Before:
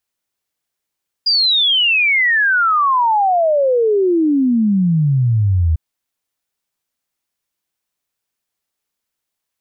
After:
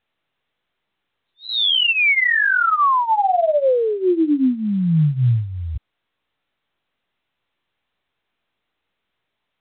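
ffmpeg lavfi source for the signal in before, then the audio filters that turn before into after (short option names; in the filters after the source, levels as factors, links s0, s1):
-f lavfi -i "aevalsrc='0.282*clip(min(t,4.5-t)/0.01,0,1)*sin(2*PI*4900*4.5/log(77/4900)*(exp(log(77/4900)*t/4.5)-1))':d=4.5:s=44100"
-af "flanger=delay=15:depth=4.4:speed=1.1" -ar 8000 -c:a pcm_mulaw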